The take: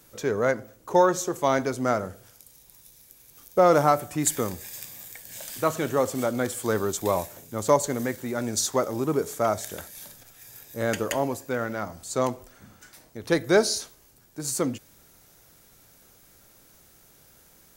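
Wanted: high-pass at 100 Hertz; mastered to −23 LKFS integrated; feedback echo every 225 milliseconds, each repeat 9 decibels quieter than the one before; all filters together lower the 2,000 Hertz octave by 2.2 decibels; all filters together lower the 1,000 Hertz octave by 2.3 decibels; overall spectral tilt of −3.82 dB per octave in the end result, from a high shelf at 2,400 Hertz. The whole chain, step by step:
high-pass filter 100 Hz
parametric band 1,000 Hz −3 dB
parametric band 2,000 Hz −3.5 dB
high-shelf EQ 2,400 Hz +4 dB
repeating echo 225 ms, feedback 35%, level −9 dB
level +2.5 dB

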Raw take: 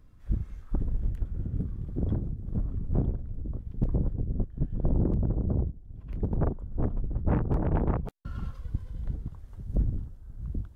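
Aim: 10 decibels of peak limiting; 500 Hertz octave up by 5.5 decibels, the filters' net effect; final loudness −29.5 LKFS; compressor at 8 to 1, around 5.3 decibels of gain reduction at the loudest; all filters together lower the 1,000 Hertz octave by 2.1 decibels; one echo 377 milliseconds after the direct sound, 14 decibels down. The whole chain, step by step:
parametric band 500 Hz +8.5 dB
parametric band 1,000 Hz −7 dB
downward compressor 8 to 1, threshold −25 dBFS
brickwall limiter −26 dBFS
single-tap delay 377 ms −14 dB
level +8.5 dB

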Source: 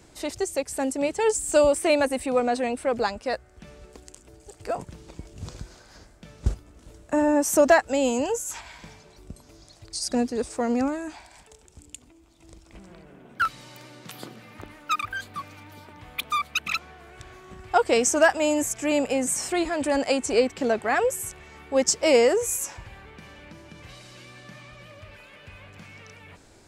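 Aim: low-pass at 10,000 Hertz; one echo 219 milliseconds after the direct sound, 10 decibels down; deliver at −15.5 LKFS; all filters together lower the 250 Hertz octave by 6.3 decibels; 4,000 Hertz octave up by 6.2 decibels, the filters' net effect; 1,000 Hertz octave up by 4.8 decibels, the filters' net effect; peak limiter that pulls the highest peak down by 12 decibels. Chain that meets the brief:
low-pass filter 10,000 Hz
parametric band 250 Hz −8 dB
parametric band 1,000 Hz +7 dB
parametric band 4,000 Hz +8 dB
brickwall limiter −14.5 dBFS
single-tap delay 219 ms −10 dB
level +10 dB

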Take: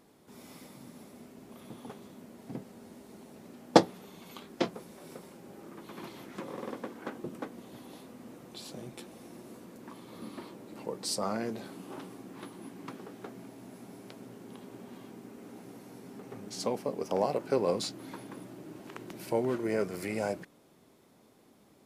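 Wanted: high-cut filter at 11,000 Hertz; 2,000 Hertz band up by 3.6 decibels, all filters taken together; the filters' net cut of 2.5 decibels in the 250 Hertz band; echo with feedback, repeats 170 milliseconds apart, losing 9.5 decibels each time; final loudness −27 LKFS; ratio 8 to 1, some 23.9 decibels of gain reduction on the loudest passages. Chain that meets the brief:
low-pass filter 11,000 Hz
parametric band 250 Hz −3.5 dB
parametric band 2,000 Hz +4.5 dB
downward compressor 8 to 1, threshold −40 dBFS
repeating echo 170 ms, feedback 33%, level −9.5 dB
level +20 dB

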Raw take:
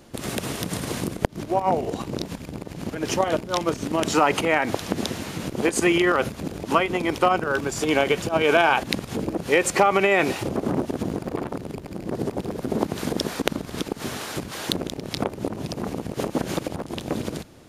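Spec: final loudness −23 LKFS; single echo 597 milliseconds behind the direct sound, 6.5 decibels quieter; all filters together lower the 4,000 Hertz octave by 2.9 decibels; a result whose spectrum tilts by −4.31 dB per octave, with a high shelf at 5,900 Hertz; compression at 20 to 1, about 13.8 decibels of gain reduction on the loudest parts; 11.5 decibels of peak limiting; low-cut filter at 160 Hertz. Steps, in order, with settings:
high-pass filter 160 Hz
parametric band 4,000 Hz −6.5 dB
high-shelf EQ 5,900 Hz +7 dB
downward compressor 20 to 1, threshold −27 dBFS
brickwall limiter −21.5 dBFS
single-tap delay 597 ms −6.5 dB
level +10.5 dB

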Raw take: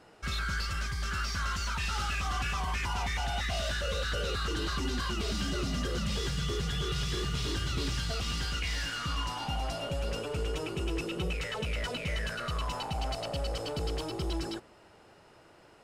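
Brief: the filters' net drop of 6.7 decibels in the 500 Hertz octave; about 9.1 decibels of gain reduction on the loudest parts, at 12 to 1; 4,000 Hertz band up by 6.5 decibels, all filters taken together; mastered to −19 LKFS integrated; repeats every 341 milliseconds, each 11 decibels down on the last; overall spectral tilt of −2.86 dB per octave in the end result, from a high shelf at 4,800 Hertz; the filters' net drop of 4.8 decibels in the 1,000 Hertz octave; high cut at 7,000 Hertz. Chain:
low-pass filter 7,000 Hz
parametric band 500 Hz −7.5 dB
parametric band 1,000 Hz −5.5 dB
parametric band 4,000 Hz +5.5 dB
high-shelf EQ 4,800 Hz +8.5 dB
downward compressor 12 to 1, threshold −36 dBFS
repeating echo 341 ms, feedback 28%, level −11 dB
level +19.5 dB

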